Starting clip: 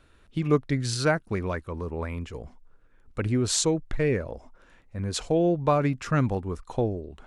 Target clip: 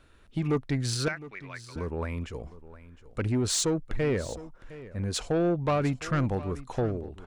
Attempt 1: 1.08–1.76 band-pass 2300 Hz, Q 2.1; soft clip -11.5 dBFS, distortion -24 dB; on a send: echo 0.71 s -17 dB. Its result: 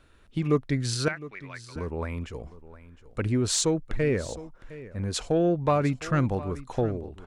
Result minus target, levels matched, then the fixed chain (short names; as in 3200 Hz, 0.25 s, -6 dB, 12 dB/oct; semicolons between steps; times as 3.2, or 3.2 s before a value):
soft clip: distortion -11 dB
1.08–1.76 band-pass 2300 Hz, Q 2.1; soft clip -20 dBFS, distortion -13 dB; on a send: echo 0.71 s -17 dB